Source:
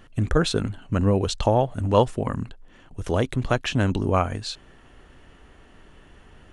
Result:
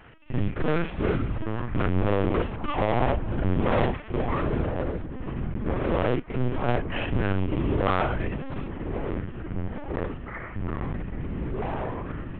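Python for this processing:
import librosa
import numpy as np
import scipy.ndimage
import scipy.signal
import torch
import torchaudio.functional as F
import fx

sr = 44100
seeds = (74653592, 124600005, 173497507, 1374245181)

y = fx.cvsd(x, sr, bps=16000)
y = fx.low_shelf(y, sr, hz=160.0, db=-5.5)
y = fx.notch(y, sr, hz=1600.0, q=28.0)
y = fx.stretch_grains(y, sr, factor=1.9, grain_ms=138.0)
y = fx.notch_comb(y, sr, f0_hz=210.0)
y = np.clip(10.0 ** (27.0 / 20.0) * y, -1.0, 1.0) / 10.0 ** (27.0 / 20.0)
y = fx.air_absorb(y, sr, metres=66.0)
y = fx.echo_wet_highpass(y, sr, ms=597, feedback_pct=44, hz=2100.0, wet_db=-18.5)
y = fx.echo_pitch(y, sr, ms=497, semitones=-6, count=3, db_per_echo=-6.0)
y = fx.lpc_vocoder(y, sr, seeds[0], excitation='pitch_kept', order=10)
y = F.gain(torch.from_numpy(y), 6.5).numpy()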